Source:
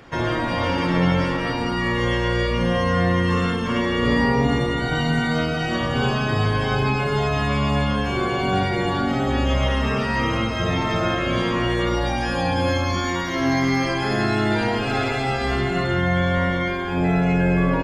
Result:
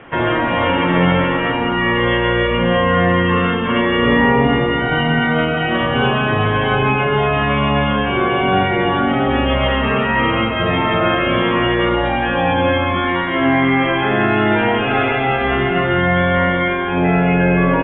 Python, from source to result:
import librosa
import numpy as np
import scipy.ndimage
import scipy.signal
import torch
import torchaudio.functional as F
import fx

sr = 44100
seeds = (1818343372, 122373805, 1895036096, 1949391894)

y = scipy.signal.sosfilt(scipy.signal.butter(16, 3300.0, 'lowpass', fs=sr, output='sos'), x)
y = fx.low_shelf(y, sr, hz=150.0, db=-9.0)
y = F.gain(torch.from_numpy(y), 7.5).numpy()